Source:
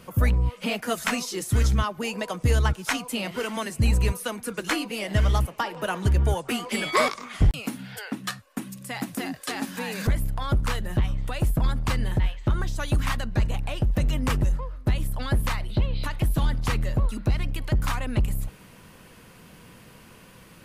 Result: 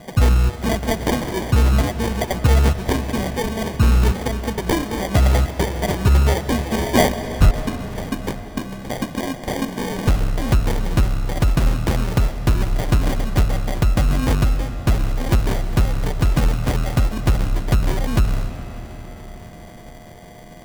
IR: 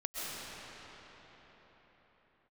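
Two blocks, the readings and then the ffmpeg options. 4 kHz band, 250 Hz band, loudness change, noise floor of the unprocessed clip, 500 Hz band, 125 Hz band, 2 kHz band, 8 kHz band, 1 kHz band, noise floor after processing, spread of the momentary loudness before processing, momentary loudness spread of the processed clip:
+3.5 dB, +7.5 dB, +6.0 dB, -50 dBFS, +7.5 dB, +6.5 dB, +2.5 dB, +4.0 dB, +5.0 dB, -39 dBFS, 8 LU, 10 LU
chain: -filter_complex "[0:a]aeval=exprs='val(0)+0.00316*sin(2*PI*710*n/s)':c=same,acrusher=samples=33:mix=1:aa=0.000001,asplit=2[s0][s1];[1:a]atrim=start_sample=2205[s2];[s1][s2]afir=irnorm=-1:irlink=0,volume=0.224[s3];[s0][s3]amix=inputs=2:normalize=0,volume=1.78"

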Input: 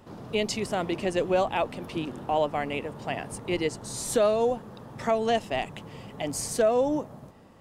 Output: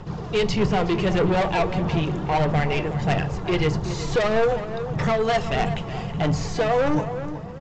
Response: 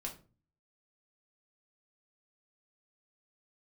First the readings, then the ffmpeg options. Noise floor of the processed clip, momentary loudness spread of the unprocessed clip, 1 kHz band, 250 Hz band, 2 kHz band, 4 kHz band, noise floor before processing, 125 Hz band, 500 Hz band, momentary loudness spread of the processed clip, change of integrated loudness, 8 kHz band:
-33 dBFS, 11 LU, +5.0 dB, +7.0 dB, +7.0 dB, +4.5 dB, -49 dBFS, +15.0 dB, +3.0 dB, 6 LU, +4.5 dB, -5.0 dB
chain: -filter_complex "[0:a]aphaser=in_gain=1:out_gain=1:delay=3:decay=0.47:speed=1.6:type=sinusoidal,acrossover=split=4100[s0][s1];[s1]acompressor=threshold=0.00355:ratio=4:attack=1:release=60[s2];[s0][s2]amix=inputs=2:normalize=0,lowshelf=f=110:g=7.5,aresample=16000,asoftclip=type=tanh:threshold=0.0596,aresample=44100,equalizer=f=160:t=o:w=0.33:g=10,equalizer=f=250:t=o:w=0.33:g=-11,equalizer=f=630:t=o:w=0.33:g=-4,asplit=2[s3][s4];[s4]adelay=371,lowpass=f=2400:p=1,volume=0.299,asplit=2[s5][s6];[s6]adelay=371,lowpass=f=2400:p=1,volume=0.32,asplit=2[s7][s8];[s8]adelay=371,lowpass=f=2400:p=1,volume=0.32[s9];[s3][s5][s7][s9]amix=inputs=4:normalize=0,asplit=2[s10][s11];[1:a]atrim=start_sample=2205[s12];[s11][s12]afir=irnorm=-1:irlink=0,volume=0.631[s13];[s10][s13]amix=inputs=2:normalize=0,volume=1.88"

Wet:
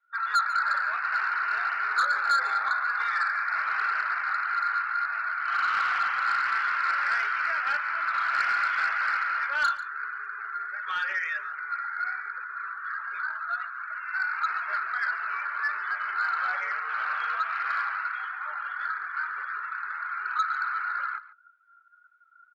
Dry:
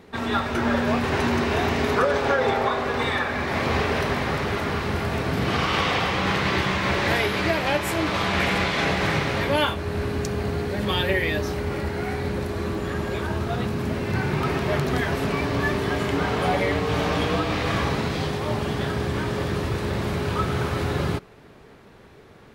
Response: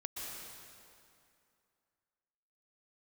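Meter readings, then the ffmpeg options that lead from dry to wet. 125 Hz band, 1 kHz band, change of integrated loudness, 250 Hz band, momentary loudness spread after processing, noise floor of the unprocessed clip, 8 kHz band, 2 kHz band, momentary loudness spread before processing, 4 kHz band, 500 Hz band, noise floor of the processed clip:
under -40 dB, -0.5 dB, -3.5 dB, under -40 dB, 9 LU, -48 dBFS, under -10 dB, +1.0 dB, 6 LU, -12.5 dB, -28.0 dB, -57 dBFS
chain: -filter_complex "[0:a]highpass=f=1400:t=q:w=11,acrossover=split=2800[s0][s1];[s1]acompressor=threshold=0.01:ratio=4:attack=1:release=60[s2];[s0][s2]amix=inputs=2:normalize=0,acrusher=bits=7:mode=log:mix=0:aa=0.000001,adynamicsmooth=sensitivity=6.5:basefreq=5800,afftdn=nr=28:nf=-32,asoftclip=type=tanh:threshold=0.282,aecho=1:1:142:0.141,volume=0.398"

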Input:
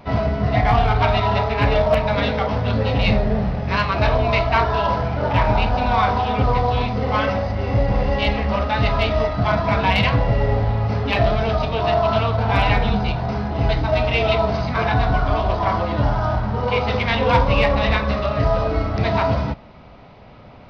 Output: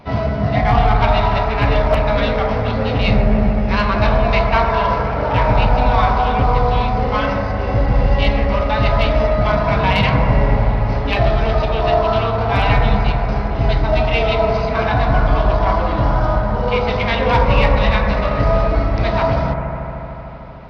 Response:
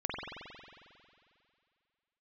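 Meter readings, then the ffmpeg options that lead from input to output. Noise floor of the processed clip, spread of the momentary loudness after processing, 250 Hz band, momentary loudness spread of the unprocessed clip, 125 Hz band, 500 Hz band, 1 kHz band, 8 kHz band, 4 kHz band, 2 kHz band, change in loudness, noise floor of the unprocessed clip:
-23 dBFS, 4 LU, +2.5 dB, 4 LU, +2.5 dB, +2.5 dB, +2.5 dB, no reading, +1.0 dB, +2.0 dB, +3.0 dB, -42 dBFS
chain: -filter_complex "[0:a]asplit=2[s0][s1];[1:a]atrim=start_sample=2205,asetrate=26460,aresample=44100[s2];[s1][s2]afir=irnorm=-1:irlink=0,volume=0.376[s3];[s0][s3]amix=inputs=2:normalize=0,volume=0.75"

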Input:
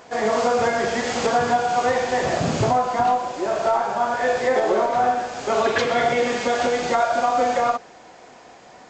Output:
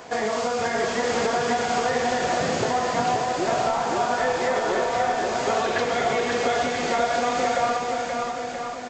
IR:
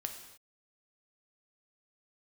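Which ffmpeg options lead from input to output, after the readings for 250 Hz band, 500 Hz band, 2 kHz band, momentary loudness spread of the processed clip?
-1.5 dB, -2.5 dB, -1.0 dB, 3 LU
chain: -filter_complex "[0:a]acrossover=split=190|1900[s0][s1][s2];[s0]acompressor=threshold=0.00501:ratio=4[s3];[s1]acompressor=threshold=0.0355:ratio=4[s4];[s2]acompressor=threshold=0.0126:ratio=4[s5];[s3][s4][s5]amix=inputs=3:normalize=0,aecho=1:1:530|980.5|1363|1689|1966:0.631|0.398|0.251|0.158|0.1,volume=1.58"

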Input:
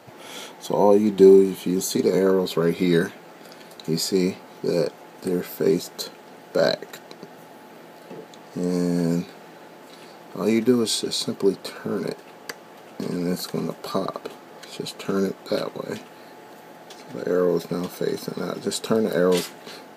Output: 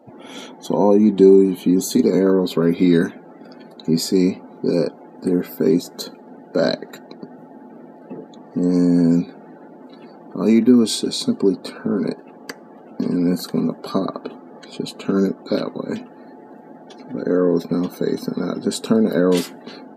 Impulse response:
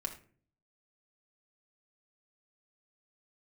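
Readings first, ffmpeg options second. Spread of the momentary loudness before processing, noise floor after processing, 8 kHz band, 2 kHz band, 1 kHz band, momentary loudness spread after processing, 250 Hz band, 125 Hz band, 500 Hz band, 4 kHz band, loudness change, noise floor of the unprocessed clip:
19 LU, -43 dBFS, +0.5 dB, 0.0 dB, +0.5 dB, 20 LU, +7.0 dB, +4.5 dB, +2.0 dB, +0.5 dB, +4.0 dB, -46 dBFS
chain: -filter_complex "[0:a]afftdn=nr=22:nf=-45,equalizer=f=250:t=o:w=0.76:g=10,asplit=2[s0][s1];[s1]alimiter=limit=0.376:level=0:latency=1,volume=0.891[s2];[s0][s2]amix=inputs=2:normalize=0,volume=0.596"

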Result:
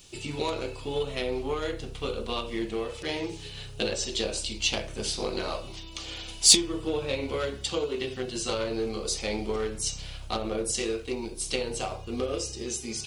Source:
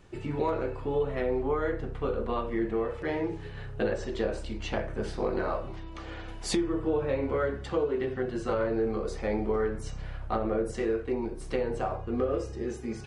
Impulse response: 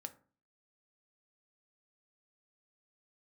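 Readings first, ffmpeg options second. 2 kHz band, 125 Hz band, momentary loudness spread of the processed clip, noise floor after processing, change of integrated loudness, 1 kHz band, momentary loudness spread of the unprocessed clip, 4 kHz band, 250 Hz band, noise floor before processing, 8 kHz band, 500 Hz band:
+2.5 dB, -2.5 dB, 7 LU, -42 dBFS, +2.0 dB, -2.0 dB, 7 LU, +16.5 dB, -2.5 dB, -41 dBFS, +19.5 dB, -2.0 dB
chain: -af "aeval=exprs='0.2*(cos(1*acos(clip(val(0)/0.2,-1,1)))-cos(1*PI/2))+0.00562*(cos(7*acos(clip(val(0)/0.2,-1,1)))-cos(7*PI/2))':c=same,aexciter=amount=10:drive=4.6:freq=2600,volume=0.841"

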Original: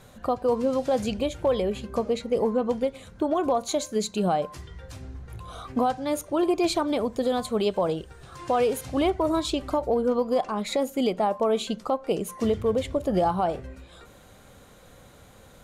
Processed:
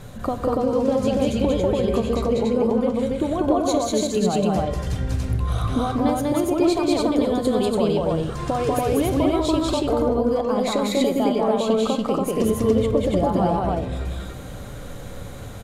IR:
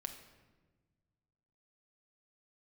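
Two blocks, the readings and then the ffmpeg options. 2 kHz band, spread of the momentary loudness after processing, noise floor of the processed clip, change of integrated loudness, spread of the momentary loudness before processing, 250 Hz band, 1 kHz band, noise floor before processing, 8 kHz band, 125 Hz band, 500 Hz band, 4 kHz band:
+3.5 dB, 8 LU, -35 dBFS, +4.5 dB, 11 LU, +7.0 dB, +2.5 dB, -51 dBFS, +4.5 dB, +11.5 dB, +4.0 dB, +3.5 dB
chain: -filter_complex "[0:a]acompressor=threshold=0.0224:ratio=3,lowshelf=f=290:g=8,aecho=1:1:192.4|285.7:0.891|0.891,asplit=2[s0][s1];[1:a]atrim=start_sample=2205,asetrate=36162,aresample=44100[s2];[s1][s2]afir=irnorm=-1:irlink=0,volume=1.41[s3];[s0][s3]amix=inputs=2:normalize=0"

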